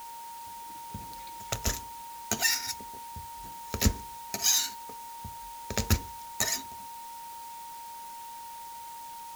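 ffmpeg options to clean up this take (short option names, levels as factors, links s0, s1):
-af "bandreject=f=930:w=30,afwtdn=0.0032"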